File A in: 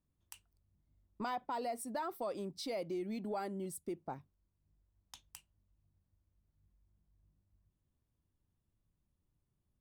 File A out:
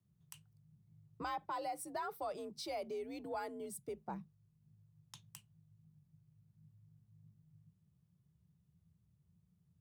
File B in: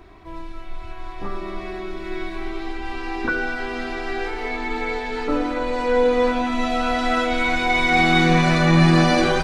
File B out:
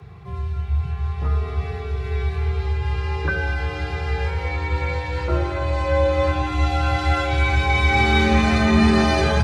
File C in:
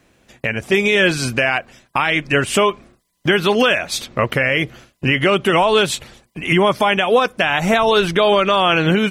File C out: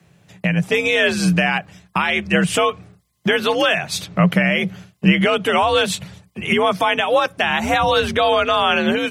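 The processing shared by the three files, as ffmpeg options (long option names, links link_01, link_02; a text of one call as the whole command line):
ffmpeg -i in.wav -af "lowshelf=frequency=150:width_type=q:width=3:gain=8,afreqshift=58,volume=-1.5dB" out.wav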